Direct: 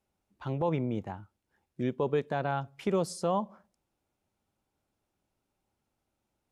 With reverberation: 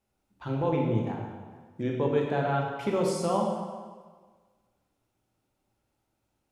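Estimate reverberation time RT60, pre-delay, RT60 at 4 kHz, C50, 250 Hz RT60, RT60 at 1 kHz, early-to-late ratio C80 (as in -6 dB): 1.5 s, 14 ms, 1.3 s, 1.5 dB, 1.4 s, 1.5 s, 4.0 dB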